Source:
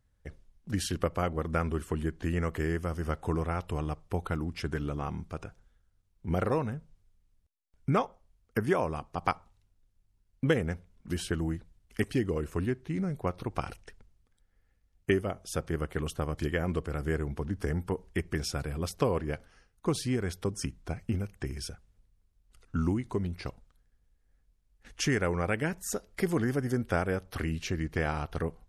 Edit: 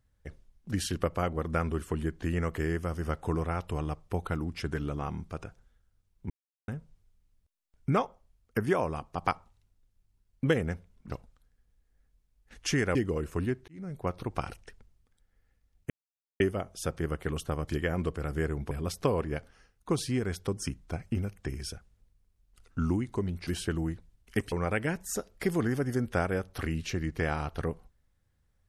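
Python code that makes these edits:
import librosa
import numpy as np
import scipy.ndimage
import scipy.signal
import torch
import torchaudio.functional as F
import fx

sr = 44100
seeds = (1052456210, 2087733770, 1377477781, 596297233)

y = fx.edit(x, sr, fx.silence(start_s=6.3, length_s=0.38),
    fx.swap(start_s=11.1, length_s=1.05, other_s=23.44, other_length_s=1.85),
    fx.fade_in_span(start_s=12.88, length_s=0.42),
    fx.insert_silence(at_s=15.1, length_s=0.5),
    fx.cut(start_s=17.41, length_s=1.27), tone=tone)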